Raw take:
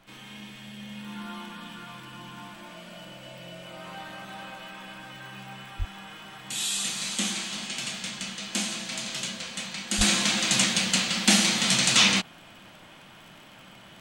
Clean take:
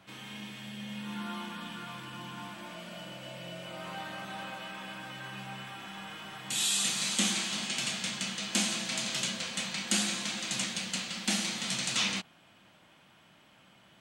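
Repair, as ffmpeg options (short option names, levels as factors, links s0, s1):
-filter_complex "[0:a]adeclick=t=4,asplit=3[s0][s1][s2];[s0]afade=t=out:st=5.78:d=0.02[s3];[s1]highpass=f=140:w=0.5412,highpass=f=140:w=1.3066,afade=t=in:st=5.78:d=0.02,afade=t=out:st=5.9:d=0.02[s4];[s2]afade=t=in:st=5.9:d=0.02[s5];[s3][s4][s5]amix=inputs=3:normalize=0,asplit=3[s6][s7][s8];[s6]afade=t=out:st=9.97:d=0.02[s9];[s7]highpass=f=140:w=0.5412,highpass=f=140:w=1.3066,afade=t=in:st=9.97:d=0.02,afade=t=out:st=10.09:d=0.02[s10];[s8]afade=t=in:st=10.09:d=0.02[s11];[s9][s10][s11]amix=inputs=3:normalize=0,agate=range=0.0891:threshold=0.00891,asetnsamples=n=441:p=0,asendcmd='10.01 volume volume -10.5dB',volume=1"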